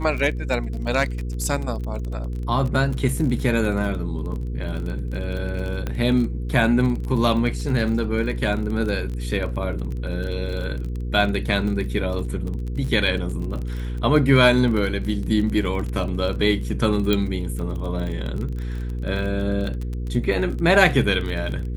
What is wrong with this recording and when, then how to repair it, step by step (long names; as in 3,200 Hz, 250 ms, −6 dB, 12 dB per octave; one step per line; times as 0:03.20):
surface crackle 28 per second −28 dBFS
mains hum 60 Hz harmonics 8 −27 dBFS
0:05.87: click −14 dBFS
0:17.13: click −8 dBFS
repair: click removal
hum removal 60 Hz, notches 8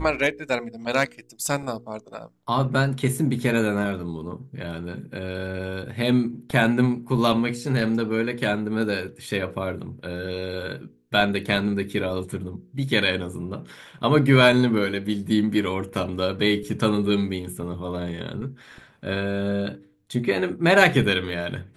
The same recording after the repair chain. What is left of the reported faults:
none of them is left